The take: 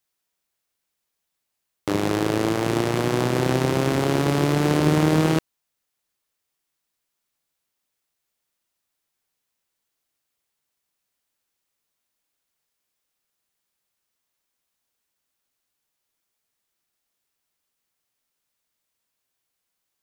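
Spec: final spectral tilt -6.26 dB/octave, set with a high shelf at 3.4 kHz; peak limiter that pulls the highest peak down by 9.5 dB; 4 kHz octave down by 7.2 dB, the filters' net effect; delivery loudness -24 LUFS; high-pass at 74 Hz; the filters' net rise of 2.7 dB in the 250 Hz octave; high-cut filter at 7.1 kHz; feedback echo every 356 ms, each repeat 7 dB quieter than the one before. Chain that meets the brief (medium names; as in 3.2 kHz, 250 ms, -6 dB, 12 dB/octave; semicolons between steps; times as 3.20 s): high-pass 74 Hz; low-pass 7.1 kHz; peaking EQ 250 Hz +4 dB; treble shelf 3.4 kHz -7.5 dB; peaking EQ 4 kHz -4 dB; peak limiter -14.5 dBFS; feedback delay 356 ms, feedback 45%, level -7 dB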